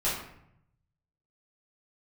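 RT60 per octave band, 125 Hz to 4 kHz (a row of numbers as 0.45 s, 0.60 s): 1.4 s, 0.95 s, 0.75 s, 0.70 s, 0.65 s, 0.45 s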